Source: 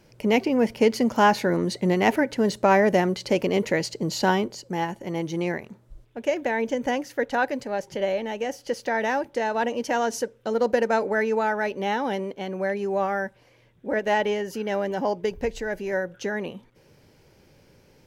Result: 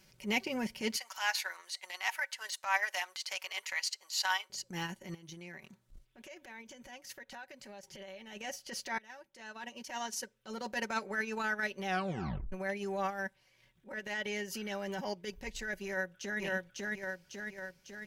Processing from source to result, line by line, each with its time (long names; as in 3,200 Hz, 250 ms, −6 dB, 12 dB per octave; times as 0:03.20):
0:00.96–0:04.50: high-pass filter 820 Hz 24 dB per octave
0:05.14–0:08.33: downward compressor 12 to 1, threshold −35 dBFS
0:08.98–0:10.87: fade in, from −20.5 dB
0:11.85: tape stop 0.67 s
0:13.09–0:14.99: downward compressor, threshold −24 dBFS
0:15.84–0:16.40: delay throw 550 ms, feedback 60%, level −0.5 dB
whole clip: guitar amp tone stack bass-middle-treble 5-5-5; comb filter 5.3 ms, depth 60%; transient designer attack −11 dB, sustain −7 dB; level +6.5 dB